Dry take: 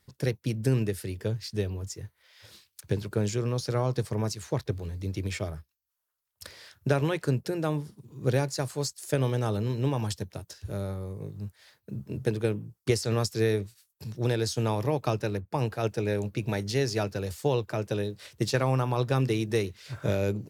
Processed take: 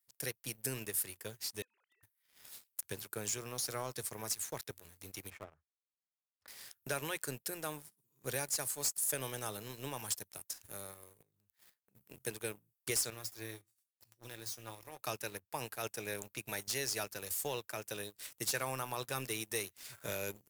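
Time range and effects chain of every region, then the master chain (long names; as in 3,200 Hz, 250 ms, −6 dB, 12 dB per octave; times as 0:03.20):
0:01.62–0:02.03: three sine waves on the formant tracks + high-pass filter 1,100 Hz + downward compressor 3 to 1, threshold −52 dBFS
0:05.30–0:06.48: low-pass filter 1,300 Hz + gain into a clipping stage and back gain 25 dB
0:11.22–0:11.95: running median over 5 samples + downward compressor, threshold −42 dBFS
0:13.10–0:14.99: running median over 3 samples + dynamic equaliser 8,000 Hz, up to −6 dB, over −53 dBFS, Q 1.7 + tuned comb filter 110 Hz, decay 0.17 s, harmonics odd, mix 80%
whole clip: first-order pre-emphasis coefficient 0.97; leveller curve on the samples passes 3; parametric band 4,500 Hz −8.5 dB 1.4 octaves; level −1.5 dB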